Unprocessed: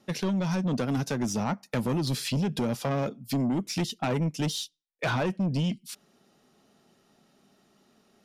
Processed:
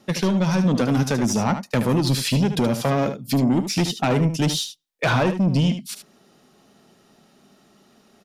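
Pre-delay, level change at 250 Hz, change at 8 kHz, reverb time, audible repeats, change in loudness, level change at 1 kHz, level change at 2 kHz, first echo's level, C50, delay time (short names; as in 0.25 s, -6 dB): none, +8.0 dB, +8.0 dB, none, 1, +8.0 dB, +8.0 dB, +8.0 dB, -9.5 dB, none, 75 ms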